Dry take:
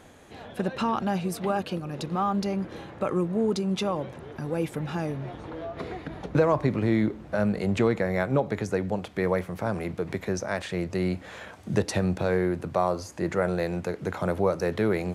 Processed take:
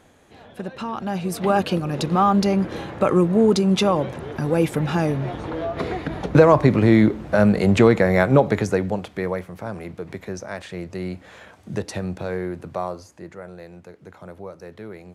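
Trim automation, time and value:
0.89 s -3 dB
1.58 s +9 dB
8.51 s +9 dB
9.49 s -2.5 dB
12.84 s -2.5 dB
13.37 s -12.5 dB

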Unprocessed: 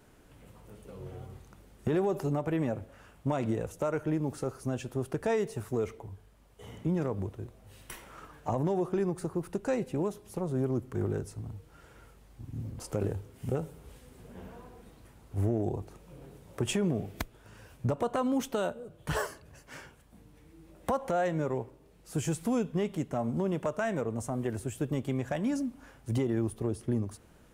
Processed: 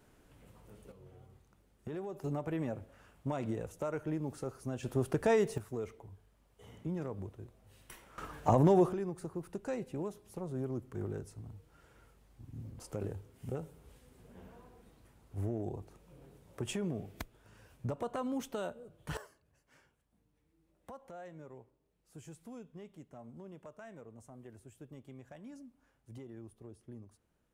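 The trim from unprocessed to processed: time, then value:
-5 dB
from 0.92 s -13 dB
from 2.24 s -6 dB
from 4.83 s +1 dB
from 5.58 s -8 dB
from 8.18 s +4.5 dB
from 8.93 s -7.5 dB
from 19.17 s -19.5 dB

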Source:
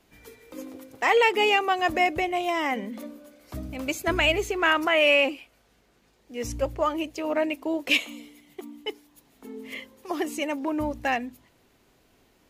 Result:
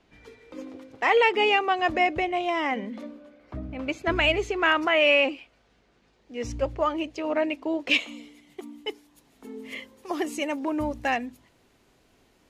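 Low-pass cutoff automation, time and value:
3.01 s 4.5 kHz
3.59 s 1.9 kHz
4.27 s 5.2 kHz
7.84 s 5.2 kHz
8.73 s 11 kHz

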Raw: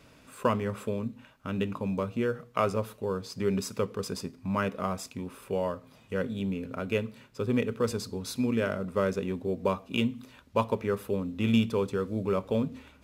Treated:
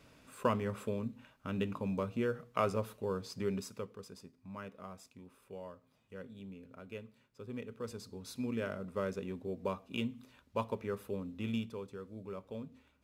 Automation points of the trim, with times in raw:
3.33 s -5 dB
4.09 s -17 dB
7.42 s -17 dB
8.52 s -9 dB
11.32 s -9 dB
11.82 s -16 dB

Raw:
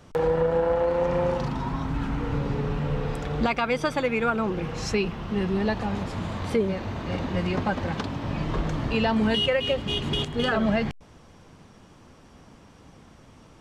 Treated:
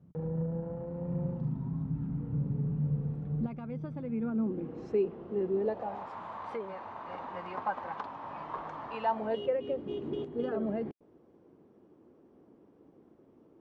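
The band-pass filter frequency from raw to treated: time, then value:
band-pass filter, Q 2.8
3.94 s 160 Hz
5.03 s 400 Hz
5.60 s 400 Hz
6.07 s 970 Hz
9.02 s 970 Hz
9.57 s 360 Hz

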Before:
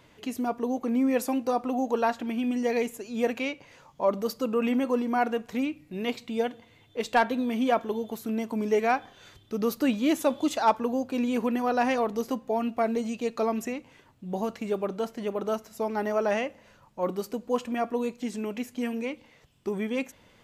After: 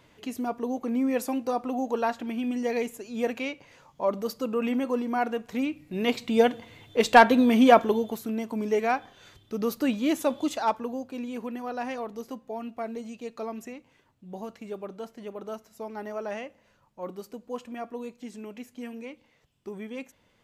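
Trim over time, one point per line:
5.43 s -1.5 dB
6.47 s +8 dB
7.80 s +8 dB
8.33 s -1 dB
10.38 s -1 dB
11.27 s -8 dB

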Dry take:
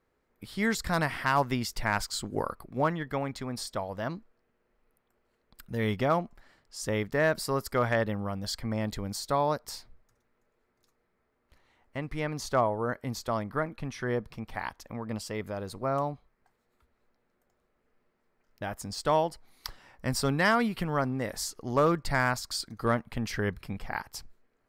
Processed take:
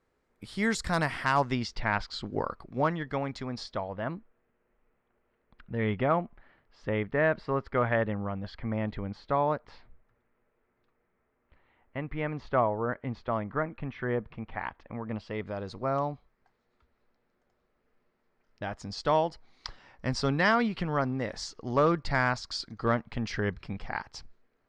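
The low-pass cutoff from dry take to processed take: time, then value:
low-pass 24 dB/octave
1.25 s 9.9 kHz
1.92 s 3.8 kHz
2.61 s 6.3 kHz
3.47 s 6.3 kHz
4.03 s 2.9 kHz
15.09 s 2.9 kHz
15.70 s 5.7 kHz

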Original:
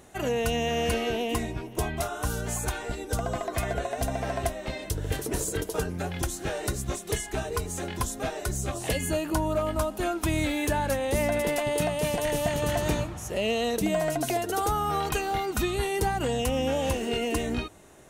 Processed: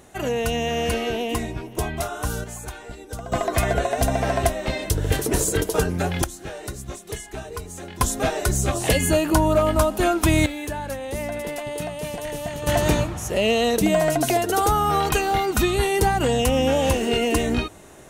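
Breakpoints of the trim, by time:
+3 dB
from 2.44 s -4.5 dB
from 3.32 s +8 dB
from 6.24 s -3 dB
from 8.01 s +8.5 dB
from 10.46 s -3 dB
from 12.67 s +7 dB

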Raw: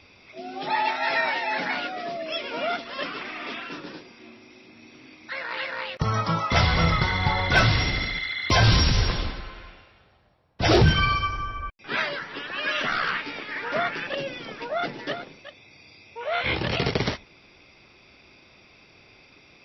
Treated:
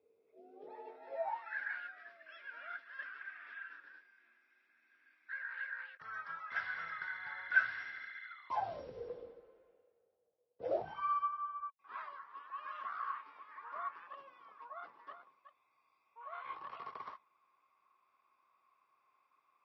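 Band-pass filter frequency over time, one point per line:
band-pass filter, Q 19
1.07 s 450 Hz
1.53 s 1.6 kHz
8.24 s 1.6 kHz
8.89 s 480 Hz
10.64 s 480 Hz
11.05 s 1.1 kHz

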